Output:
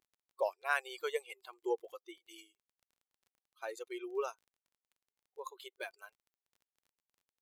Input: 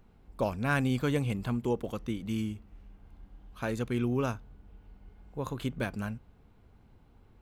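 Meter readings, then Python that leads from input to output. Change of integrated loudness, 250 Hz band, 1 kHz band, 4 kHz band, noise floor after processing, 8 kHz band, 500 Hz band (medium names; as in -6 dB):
-7.0 dB, -19.5 dB, -3.5 dB, -5.0 dB, under -85 dBFS, -5.0 dB, -4.5 dB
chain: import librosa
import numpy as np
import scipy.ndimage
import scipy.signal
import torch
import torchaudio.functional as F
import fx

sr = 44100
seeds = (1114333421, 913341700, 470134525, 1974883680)

y = fx.bin_expand(x, sr, power=2.0)
y = fx.brickwall_highpass(y, sr, low_hz=350.0)
y = fx.dmg_crackle(y, sr, seeds[0], per_s=25.0, level_db=-56.0)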